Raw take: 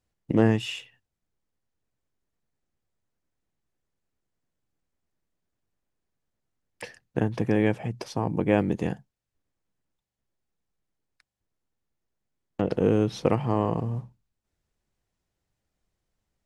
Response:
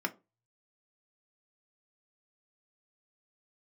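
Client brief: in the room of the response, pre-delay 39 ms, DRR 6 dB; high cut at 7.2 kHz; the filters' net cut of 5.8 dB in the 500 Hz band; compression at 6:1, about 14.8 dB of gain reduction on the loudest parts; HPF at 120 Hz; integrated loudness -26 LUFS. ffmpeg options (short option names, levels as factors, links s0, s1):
-filter_complex "[0:a]highpass=120,lowpass=7200,equalizer=f=500:t=o:g=-7,acompressor=threshold=0.0178:ratio=6,asplit=2[s0][s1];[1:a]atrim=start_sample=2205,adelay=39[s2];[s1][s2]afir=irnorm=-1:irlink=0,volume=0.282[s3];[s0][s3]amix=inputs=2:normalize=0,volume=4.73"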